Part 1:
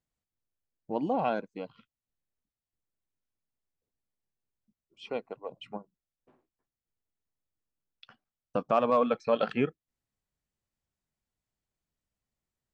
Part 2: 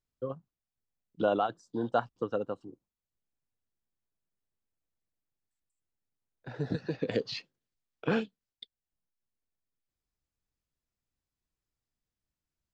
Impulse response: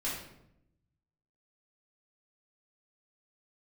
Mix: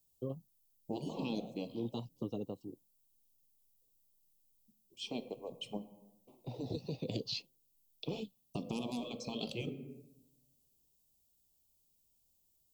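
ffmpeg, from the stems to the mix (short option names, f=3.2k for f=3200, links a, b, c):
-filter_complex "[0:a]aemphasis=mode=production:type=75fm,alimiter=limit=-17dB:level=0:latency=1:release=339,volume=2dB,asplit=3[a][b][c];[b]volume=-15.5dB[d];[1:a]adynamicequalizer=threshold=0.00891:dfrequency=320:dqfactor=0.85:tfrequency=320:tqfactor=0.85:attack=5:release=100:ratio=0.375:range=2.5:mode=cutabove:tftype=bell,volume=1dB[e];[c]apad=whole_len=561538[f];[e][f]sidechaincompress=threshold=-47dB:ratio=20:attack=6.4:release=217[g];[2:a]atrim=start_sample=2205[h];[d][h]afir=irnorm=-1:irlink=0[i];[a][g][i]amix=inputs=3:normalize=0,afftfilt=real='re*lt(hypot(re,im),0.2)':imag='im*lt(hypot(re,im),0.2)':win_size=1024:overlap=0.75,acrossover=split=440|3000[j][k][l];[k]acompressor=threshold=-47dB:ratio=6[m];[j][m][l]amix=inputs=3:normalize=0,asuperstop=centerf=1600:order=4:qfactor=0.85"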